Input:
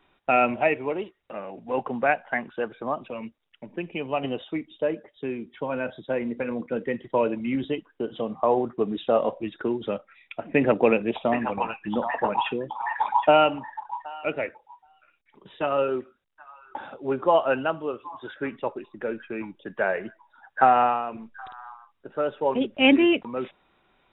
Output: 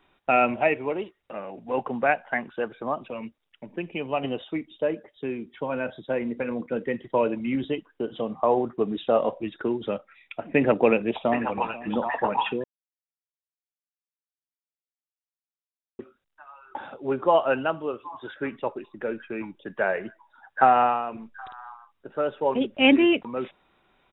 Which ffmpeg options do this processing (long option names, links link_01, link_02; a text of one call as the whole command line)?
ffmpeg -i in.wav -filter_complex "[0:a]asplit=2[link_01][link_02];[link_02]afade=type=in:start_time=10.88:duration=0.01,afade=type=out:start_time=11.45:duration=0.01,aecho=0:1:490|980|1470|1960|2450|2940:0.133352|0.0800113|0.0480068|0.0288041|0.0172824|0.0103695[link_03];[link_01][link_03]amix=inputs=2:normalize=0,asplit=3[link_04][link_05][link_06];[link_04]atrim=end=12.64,asetpts=PTS-STARTPTS,afade=type=out:start_time=12.636:duration=0.004:curve=hsin[link_07];[link_05]atrim=start=12.64:end=15.99,asetpts=PTS-STARTPTS,volume=0[link_08];[link_06]atrim=start=15.99,asetpts=PTS-STARTPTS,afade=type=in:duration=0.004:curve=hsin[link_09];[link_07][link_08][link_09]concat=n=3:v=0:a=1" out.wav